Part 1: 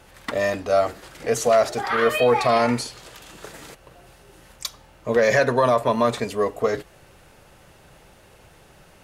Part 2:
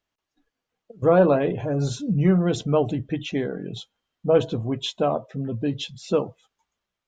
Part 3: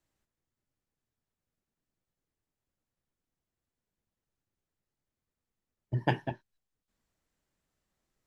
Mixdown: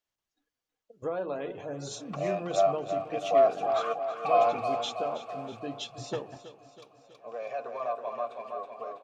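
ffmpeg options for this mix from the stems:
-filter_complex "[0:a]asplit=3[s0][s1][s2];[s0]bandpass=f=730:t=q:w=8,volume=1[s3];[s1]bandpass=f=1090:t=q:w=8,volume=0.501[s4];[s2]bandpass=f=2440:t=q:w=8,volume=0.355[s5];[s3][s4][s5]amix=inputs=3:normalize=0,adelay=1850,volume=1.06,asplit=2[s6][s7];[s7]volume=0.398[s8];[1:a]bass=f=250:g=-11,treble=f=4000:g=6,bandreject=f=60:t=h:w=6,bandreject=f=120:t=h:w=6,bandreject=f=180:t=h:w=6,bandreject=f=240:t=h:w=6,bandreject=f=300:t=h:w=6,bandreject=f=360:t=h:w=6,bandreject=f=420:t=h:w=6,acompressor=threshold=0.0891:ratio=5,volume=0.376,asplit=3[s9][s10][s11];[s10]volume=0.188[s12];[2:a]adelay=50,volume=0.211,asplit=2[s13][s14];[s14]volume=0.119[s15];[s11]apad=whole_len=480017[s16];[s6][s16]sidechaingate=range=0.0224:threshold=0.00158:ratio=16:detection=peak[s17];[s8][s12][s15]amix=inputs=3:normalize=0,aecho=0:1:324|648|972|1296|1620|1944|2268|2592|2916:1|0.57|0.325|0.185|0.106|0.0602|0.0343|0.0195|0.0111[s18];[s17][s9][s13][s18]amix=inputs=4:normalize=0"

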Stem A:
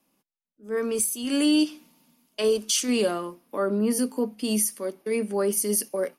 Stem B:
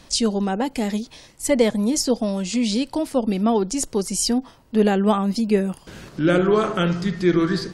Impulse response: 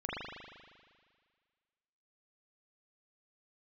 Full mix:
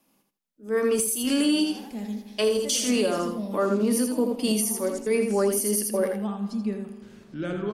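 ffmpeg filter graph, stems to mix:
-filter_complex "[0:a]volume=1.41,asplit=3[s0][s1][s2];[s1]volume=0.562[s3];[1:a]equalizer=f=220:w=4.3:g=8.5,dynaudnorm=f=140:g=13:m=3.76,adelay=1150,volume=0.126,asplit=3[s4][s5][s6];[s5]volume=0.251[s7];[s6]volume=0.398[s8];[s2]apad=whole_len=391642[s9];[s4][s9]sidechaincompress=threshold=0.0355:ratio=8:attack=16:release=416[s10];[2:a]atrim=start_sample=2205[s11];[s7][s11]afir=irnorm=-1:irlink=0[s12];[s3][s8]amix=inputs=2:normalize=0,aecho=0:1:81|162|243:1|0.21|0.0441[s13];[s0][s10][s12][s13]amix=inputs=4:normalize=0,alimiter=limit=0.188:level=0:latency=1:release=222"

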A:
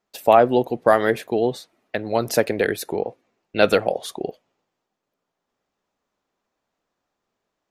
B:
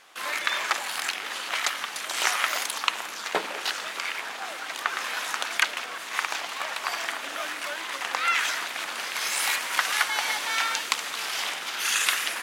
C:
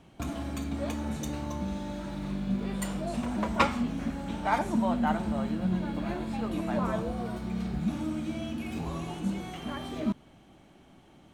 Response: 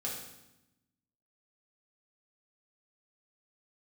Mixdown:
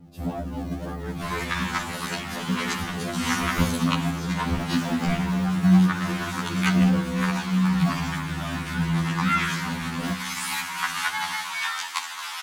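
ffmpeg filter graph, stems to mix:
-filter_complex "[0:a]acompressor=threshold=0.126:ratio=6,volume=0.237[s0];[1:a]lowshelf=f=720:t=q:w=3:g=-9,adelay=1050,volume=0.668,asplit=2[s1][s2];[s2]volume=0.355[s3];[2:a]equalizer=f=160:w=1.1:g=10,acrusher=samples=38:mix=1:aa=0.000001:lfo=1:lforange=22.8:lforate=1.8,tiltshelf=f=750:g=7,volume=0.562,asplit=2[s4][s5];[s5]volume=0.398[s6];[3:a]atrim=start_sample=2205[s7];[s3][s6]amix=inputs=2:normalize=0[s8];[s8][s7]afir=irnorm=-1:irlink=0[s9];[s0][s1][s4][s9]amix=inputs=4:normalize=0,afftfilt=real='re*2*eq(mod(b,4),0)':imag='im*2*eq(mod(b,4),0)':win_size=2048:overlap=0.75"

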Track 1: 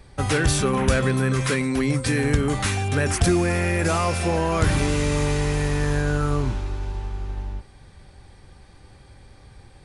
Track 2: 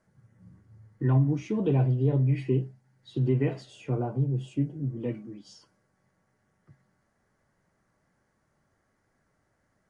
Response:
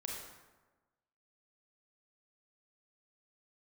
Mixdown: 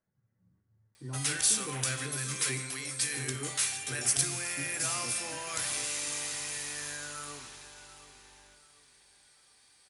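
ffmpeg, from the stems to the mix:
-filter_complex "[0:a]aderivative,adelay=950,volume=0.841,asplit=3[s0][s1][s2];[s1]volume=0.562[s3];[s2]volume=0.237[s4];[1:a]volume=0.15,asplit=2[s5][s6];[s6]volume=0.316[s7];[2:a]atrim=start_sample=2205[s8];[s3][s8]afir=irnorm=-1:irlink=0[s9];[s4][s7]amix=inputs=2:normalize=0,aecho=0:1:736|1472|2208|2944|3680:1|0.36|0.13|0.0467|0.0168[s10];[s0][s5][s9][s10]amix=inputs=4:normalize=0"

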